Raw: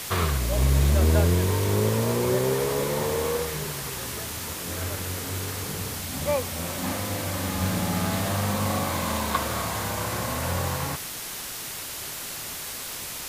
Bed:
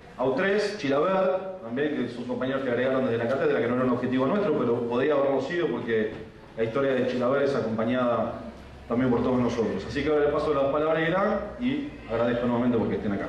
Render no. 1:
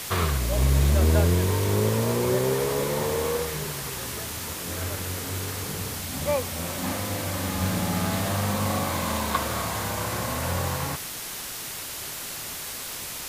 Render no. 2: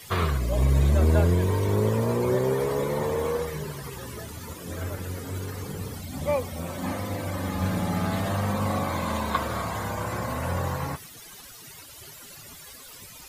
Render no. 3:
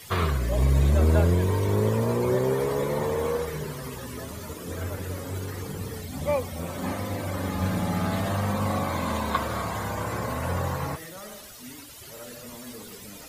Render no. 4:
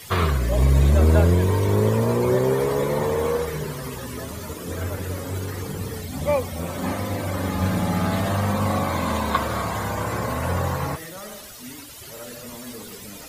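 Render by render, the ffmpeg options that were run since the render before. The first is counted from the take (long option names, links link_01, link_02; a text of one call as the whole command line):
ffmpeg -i in.wav -af anull out.wav
ffmpeg -i in.wav -af "afftdn=noise_reduction=16:noise_floor=-35" out.wav
ffmpeg -i in.wav -i bed.wav -filter_complex "[1:a]volume=-19dB[link_01];[0:a][link_01]amix=inputs=2:normalize=0" out.wav
ffmpeg -i in.wav -af "volume=4dB" out.wav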